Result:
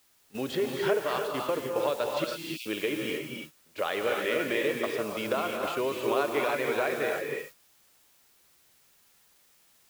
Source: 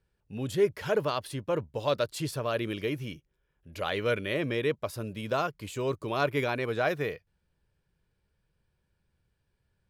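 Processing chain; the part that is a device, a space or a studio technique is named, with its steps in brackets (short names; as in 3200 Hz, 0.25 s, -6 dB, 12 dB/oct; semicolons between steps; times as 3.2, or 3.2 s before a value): baby monitor (BPF 330–3500 Hz; compressor, threshold -34 dBFS, peak gain reduction 13 dB; white noise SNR 16 dB; gate -47 dBFS, range -16 dB); 2.24–2.66 steep high-pass 2400 Hz 96 dB/oct; non-linear reverb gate 0.34 s rising, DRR 1 dB; gain +7.5 dB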